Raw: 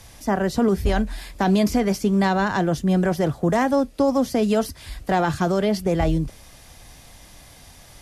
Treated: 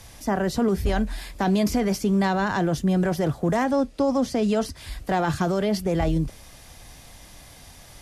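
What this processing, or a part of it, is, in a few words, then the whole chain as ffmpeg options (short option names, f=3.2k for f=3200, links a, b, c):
clipper into limiter: -filter_complex "[0:a]asoftclip=type=hard:threshold=-12dB,alimiter=limit=-15dB:level=0:latency=1:release=16,asettb=1/sr,asplit=3[a][b][c];[a]atrim=end=3.644[d];[b]atrim=start=3.64:end=4.76,asetpts=PTS-STARTPTS,afade=t=in:d=0.004:c=qsin,afade=t=out:st=1.116:d=0.004:c=qsin,lowpass=8.8k[e];[c]atrim=start=4.756[f];[d][e]acrossfade=d=0.004:c1=hsin:c2=qsin[g];[g][f]acrossfade=d=0.004:c1=qsin:c2=hsin"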